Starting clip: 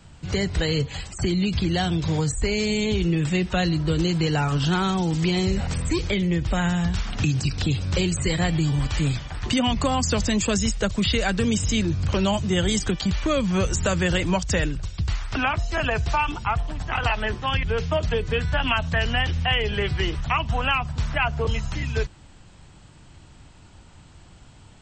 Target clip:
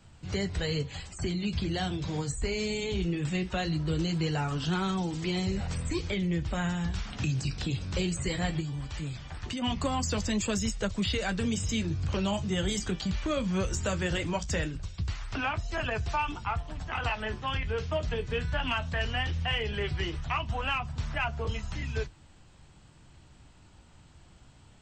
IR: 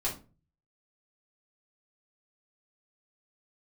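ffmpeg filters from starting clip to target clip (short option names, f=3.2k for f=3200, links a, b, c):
-filter_complex "[0:a]asettb=1/sr,asplit=3[a][b][c];[a]atrim=end=8.604[d];[b]atrim=start=8.6:end=9.62,asetpts=PTS-STARTPTS,afade=t=in:d=0.004:c=qsin,afade=t=out:st=1.016:d=0.004:c=qsin,acompressor=threshold=-26dB:ratio=6[e];[c]atrim=start=9.616[f];[d][e]acrossfade=d=0.004:c1=hsin:c2=qsin[g];[g][f]acrossfade=d=0.004:c1=qsin:c2=hsin,asoftclip=type=tanh:threshold=-10.5dB,flanger=delay=8.9:depth=8.2:regen=-52:speed=0.19:shape=triangular,volume=-3dB"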